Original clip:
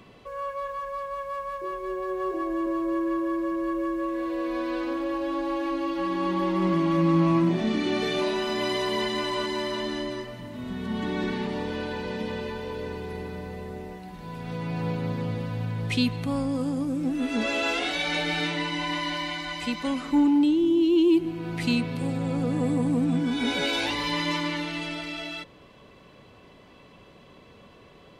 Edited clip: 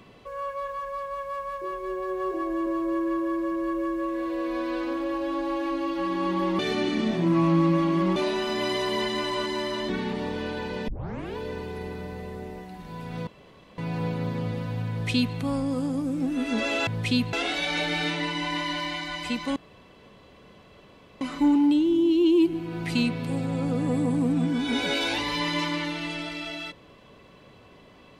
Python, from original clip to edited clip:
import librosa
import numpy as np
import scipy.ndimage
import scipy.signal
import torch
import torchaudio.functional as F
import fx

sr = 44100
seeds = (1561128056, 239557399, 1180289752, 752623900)

y = fx.edit(x, sr, fx.reverse_span(start_s=6.59, length_s=1.57),
    fx.cut(start_s=9.89, length_s=1.34),
    fx.tape_start(start_s=12.22, length_s=0.49),
    fx.insert_room_tone(at_s=14.61, length_s=0.51),
    fx.duplicate(start_s=15.73, length_s=0.46, to_s=17.7),
    fx.insert_room_tone(at_s=19.93, length_s=1.65), tone=tone)